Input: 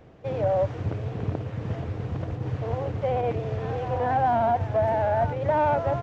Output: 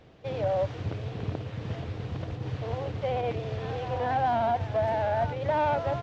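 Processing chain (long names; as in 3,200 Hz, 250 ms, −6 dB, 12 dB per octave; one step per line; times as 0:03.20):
parametric band 3,900 Hz +9.5 dB 1.5 octaves
level −4 dB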